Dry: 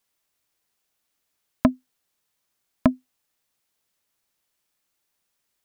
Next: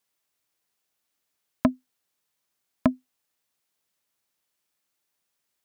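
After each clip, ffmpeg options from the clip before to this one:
ffmpeg -i in.wav -af "highpass=frequency=82:poles=1,volume=-2.5dB" out.wav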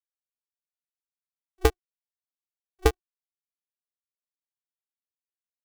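ffmpeg -i in.wav -af "aeval=exprs='val(0)*gte(abs(val(0)),0.0355)':channel_layout=same,afftfilt=real='re*between(b*sr/4096,180,530)':imag='im*between(b*sr/4096,180,530)':win_size=4096:overlap=0.75,aeval=exprs='val(0)*sgn(sin(2*PI*190*n/s))':channel_layout=same,volume=2.5dB" out.wav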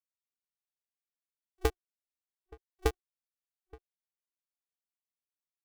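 ffmpeg -i in.wav -filter_complex "[0:a]asplit=2[link_01][link_02];[link_02]adelay=874.6,volume=-23dB,highshelf=frequency=4000:gain=-19.7[link_03];[link_01][link_03]amix=inputs=2:normalize=0,volume=-8dB" out.wav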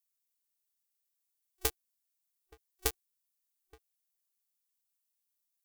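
ffmpeg -i in.wav -af "crystalizer=i=7.5:c=0,volume=-9dB" out.wav

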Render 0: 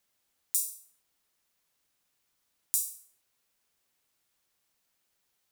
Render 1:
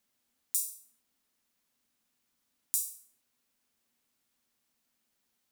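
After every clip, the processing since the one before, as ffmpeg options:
ffmpeg -i in.wav -af "equalizer=frequency=240:width_type=o:width=0.42:gain=12.5,volume=-2dB" out.wav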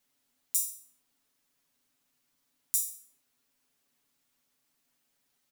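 ffmpeg -i in.wav -af "aecho=1:1:7.1:0.83" out.wav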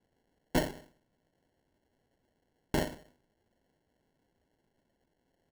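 ffmpeg -i in.wav -af "acrusher=samples=36:mix=1:aa=0.000001" out.wav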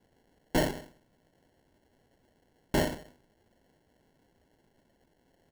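ffmpeg -i in.wav -af "asoftclip=type=tanh:threshold=-28dB,volume=8dB" out.wav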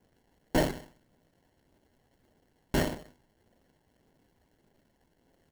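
ffmpeg -i in.wav -af "aphaser=in_gain=1:out_gain=1:delay=1.2:decay=0.26:speed=1.7:type=triangular,acrusher=bits=2:mode=log:mix=0:aa=0.000001,volume=-2dB" out.wav

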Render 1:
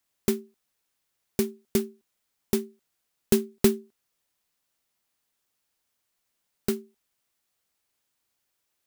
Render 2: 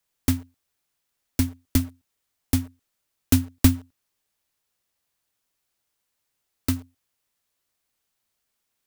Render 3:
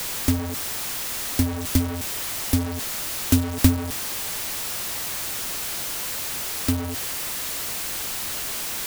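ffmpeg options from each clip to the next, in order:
ffmpeg -i in.wav -filter_complex "[0:a]afreqshift=-130,asplit=2[link_01][link_02];[link_02]acrusher=bits=6:mix=0:aa=0.000001,volume=-6dB[link_03];[link_01][link_03]amix=inputs=2:normalize=0" out.wav
ffmpeg -i in.wav -af "aeval=exprs='val(0)+0.5*0.0794*sgn(val(0))':channel_layout=same,volume=-1dB" out.wav

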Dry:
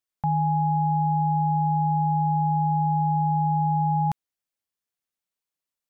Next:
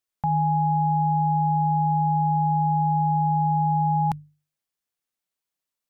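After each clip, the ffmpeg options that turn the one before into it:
ffmpeg -i in.wav -af "bandreject=frequency=50:width_type=h:width=6,bandreject=frequency=100:width_type=h:width=6,bandreject=frequency=150:width_type=h:width=6,volume=1.5dB" out.wav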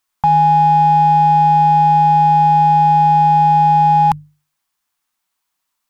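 ffmpeg -i in.wav -filter_complex "[0:a]equalizer=frequency=125:width_type=o:width=1:gain=-6,equalizer=frequency=500:width_type=o:width=1:gain=-9,equalizer=frequency=1000:width_type=o:width=1:gain=8,asplit=2[link_01][link_02];[link_02]asoftclip=type=tanh:threshold=-30dB,volume=-6.5dB[link_03];[link_01][link_03]amix=inputs=2:normalize=0,volume=8.5dB" out.wav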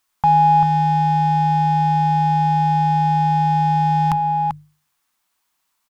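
ffmpeg -i in.wav -filter_complex "[0:a]alimiter=limit=-11dB:level=0:latency=1:release=320,asplit=2[link_01][link_02];[link_02]adelay=390.7,volume=-6dB,highshelf=frequency=4000:gain=-8.79[link_03];[link_01][link_03]amix=inputs=2:normalize=0,volume=3dB" out.wav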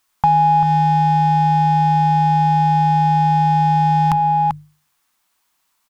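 ffmpeg -i in.wav -af "acompressor=threshold=-15dB:ratio=6,volume=4dB" out.wav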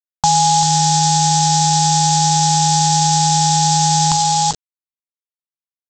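ffmpeg -i in.wav -af "aresample=16000,acrusher=bits=4:mix=0:aa=0.000001,aresample=44100,aexciter=amount=8:drive=4.9:freq=3400,volume=-1dB" out.wav

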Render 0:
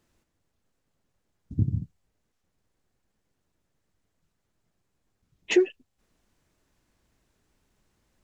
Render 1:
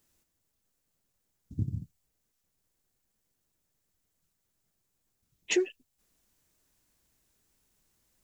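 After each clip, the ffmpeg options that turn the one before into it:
ffmpeg -i in.wav -af "aemphasis=mode=production:type=75kf,volume=-7dB" out.wav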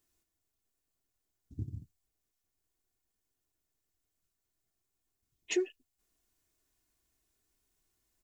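ffmpeg -i in.wav -af "aecho=1:1:2.8:0.45,volume=-7dB" out.wav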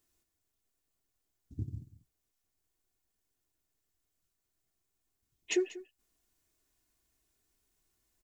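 ffmpeg -i in.wav -af "aecho=1:1:190:0.141,volume=1dB" out.wav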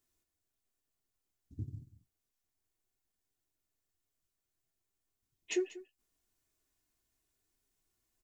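ffmpeg -i in.wav -af "flanger=delay=7.4:depth=3.4:regen=-51:speed=1.7:shape=sinusoidal" out.wav

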